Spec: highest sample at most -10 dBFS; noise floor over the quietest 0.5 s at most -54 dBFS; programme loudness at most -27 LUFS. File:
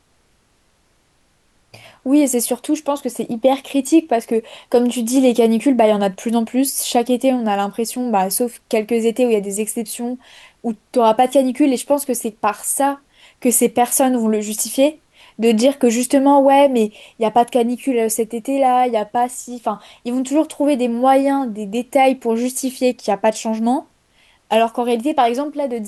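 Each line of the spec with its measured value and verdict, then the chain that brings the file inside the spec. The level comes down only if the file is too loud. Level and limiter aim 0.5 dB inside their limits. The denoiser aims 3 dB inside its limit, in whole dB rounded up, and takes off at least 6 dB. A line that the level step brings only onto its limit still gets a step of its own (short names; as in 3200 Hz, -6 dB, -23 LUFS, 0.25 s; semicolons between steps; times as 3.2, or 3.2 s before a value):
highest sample -3.5 dBFS: fail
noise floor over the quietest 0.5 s -60 dBFS: OK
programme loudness -17.5 LUFS: fail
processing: gain -10 dB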